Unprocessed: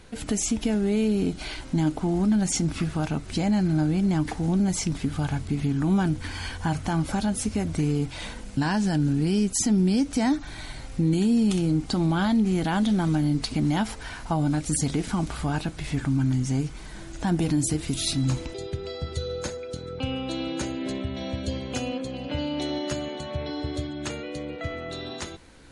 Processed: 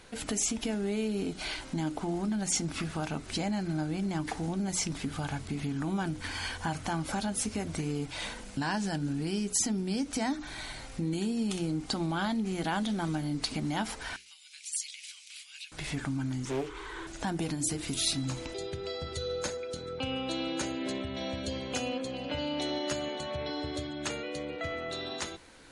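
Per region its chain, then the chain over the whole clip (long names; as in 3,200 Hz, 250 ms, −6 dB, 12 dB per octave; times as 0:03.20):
0:14.16–0:15.72: Chebyshev high-pass filter 2,400 Hz, order 4 + high-shelf EQ 4,700 Hz −7 dB
0:16.45–0:17.07: drawn EQ curve 110 Hz 0 dB, 180 Hz −19 dB, 410 Hz +14 dB, 640 Hz −10 dB, 1,000 Hz +11 dB, 2,400 Hz +1 dB, 3,400 Hz +4 dB, 4,800 Hz −7 dB, 8,000 Hz −4 dB, 12,000 Hz −13 dB + highs frequency-modulated by the lows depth 0.36 ms
whole clip: downward compressor 2.5 to 1, threshold −25 dBFS; low-shelf EQ 250 Hz −9 dB; mains-hum notches 60/120/180/240/300/360/420 Hz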